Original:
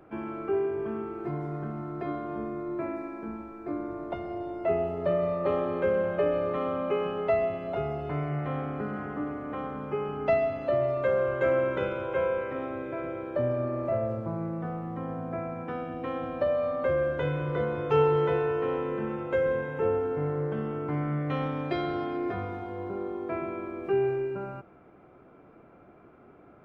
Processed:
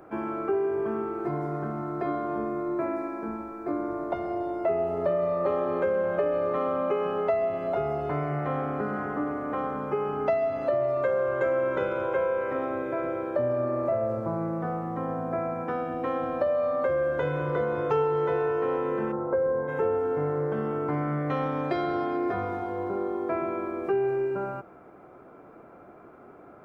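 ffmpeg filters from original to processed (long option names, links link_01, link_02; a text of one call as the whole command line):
ffmpeg -i in.wav -filter_complex "[0:a]asplit=3[link_01][link_02][link_03];[link_01]afade=type=out:start_time=19.11:duration=0.02[link_04];[link_02]lowpass=frequency=1300:width=0.5412,lowpass=frequency=1300:width=1.3066,afade=type=in:start_time=19.11:duration=0.02,afade=type=out:start_time=19.67:duration=0.02[link_05];[link_03]afade=type=in:start_time=19.67:duration=0.02[link_06];[link_04][link_05][link_06]amix=inputs=3:normalize=0,lowshelf=frequency=290:gain=-10,acompressor=threshold=-32dB:ratio=3,equalizer=frequency=2900:width_type=o:width=1.2:gain=-9,volume=8.5dB" out.wav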